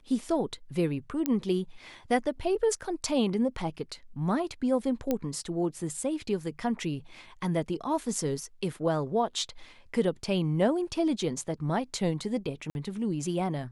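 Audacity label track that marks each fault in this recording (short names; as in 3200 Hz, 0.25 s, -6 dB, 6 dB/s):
1.260000	1.260000	pop -13 dBFS
5.110000	5.110000	pop -14 dBFS
12.700000	12.750000	gap 51 ms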